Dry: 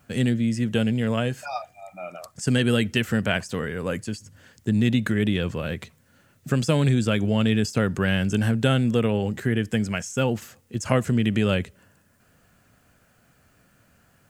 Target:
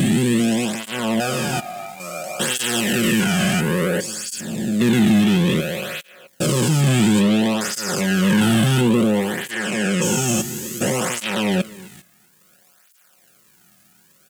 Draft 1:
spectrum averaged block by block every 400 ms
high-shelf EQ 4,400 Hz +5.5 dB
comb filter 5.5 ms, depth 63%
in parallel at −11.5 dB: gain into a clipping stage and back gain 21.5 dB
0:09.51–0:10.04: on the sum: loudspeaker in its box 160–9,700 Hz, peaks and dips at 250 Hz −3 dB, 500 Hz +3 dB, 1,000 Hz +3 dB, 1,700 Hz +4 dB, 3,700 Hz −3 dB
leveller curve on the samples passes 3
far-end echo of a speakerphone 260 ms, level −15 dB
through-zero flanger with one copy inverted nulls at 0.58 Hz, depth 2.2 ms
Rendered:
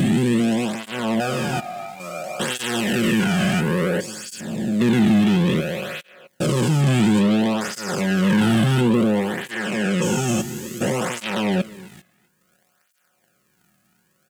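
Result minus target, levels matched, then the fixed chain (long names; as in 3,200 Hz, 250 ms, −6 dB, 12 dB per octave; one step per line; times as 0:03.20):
8,000 Hz band −6.0 dB
spectrum averaged block by block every 400 ms
high-shelf EQ 4,400 Hz +15 dB
comb filter 5.5 ms, depth 63%
in parallel at −11.5 dB: gain into a clipping stage and back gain 21.5 dB
0:09.51–0:10.04: on the sum: loudspeaker in its box 160–9,700 Hz, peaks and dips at 250 Hz −3 dB, 500 Hz +3 dB, 1,000 Hz +3 dB, 1,700 Hz +4 dB, 3,700 Hz −3 dB
leveller curve on the samples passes 3
far-end echo of a speakerphone 260 ms, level −15 dB
through-zero flanger with one copy inverted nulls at 0.58 Hz, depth 2.2 ms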